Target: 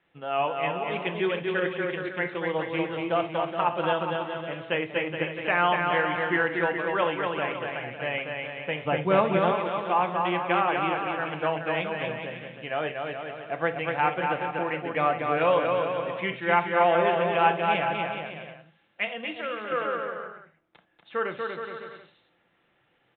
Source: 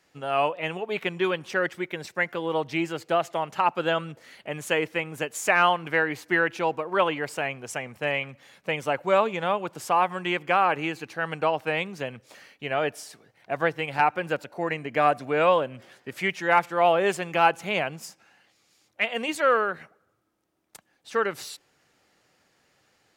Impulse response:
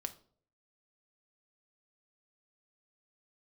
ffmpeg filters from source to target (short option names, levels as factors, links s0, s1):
-filter_complex "[0:a]aecho=1:1:240|420|555|656.2|732.2:0.631|0.398|0.251|0.158|0.1,aresample=8000,aresample=44100,asettb=1/sr,asplit=3[s0][s1][s2];[s0]atrim=end=8.854[s3];[s1]atrim=start=8.85:end=9.52,asetpts=PTS-STARTPTS,afade=t=in:d=0.004:c=qsin,afade=t=out:st=0.666:d=0.004:c=qsin,lowshelf=f=360:g=10.5[s4];[s2]atrim=start=9.516[s5];[s3][s4]acrossfade=d=0.004:c1=hsin:c2=qsin[s6];[s6][s5]acrossfade=d=0.004:c1=qsin:c2=hsin,asettb=1/sr,asplit=3[s7][s8][s9];[s7]atrim=end=19.074[s10];[s8]atrim=start=19.07:end=19.72,asetpts=PTS-STARTPTS,afade=t=in:d=0.004:c=qsin,afade=t=out:st=0.646:d=0.004:c=qsin,acrossover=split=210|3000[s11][s12][s13];[s12]acompressor=threshold=0.0251:ratio=3[s14];[s11][s14][s13]amix=inputs=3:normalize=0[s15];[s9]atrim=start=19.716[s16];[s10][s15]acrossfade=d=0.004:c1=hsin:c2=qsin[s17];[s17][s16]acrossfade=d=0.004:c1=qsin:c2=hsin[s18];[1:a]atrim=start_sample=2205,atrim=end_sample=3528,asetrate=37485,aresample=44100[s19];[s18][s19]afir=irnorm=-1:irlink=0,volume=0.75"